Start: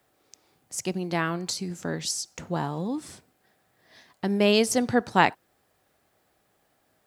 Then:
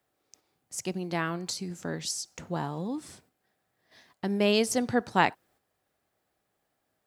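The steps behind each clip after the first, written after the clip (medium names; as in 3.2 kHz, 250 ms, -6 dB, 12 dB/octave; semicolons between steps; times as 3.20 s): gate -58 dBFS, range -6 dB; trim -3.5 dB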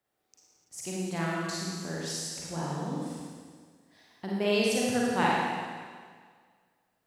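reverberation RT60 1.8 s, pre-delay 37 ms, DRR -5 dB; trim -7 dB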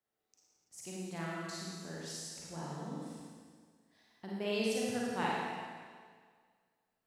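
feedback comb 220 Hz, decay 0.93 s, mix 70%; trim +1 dB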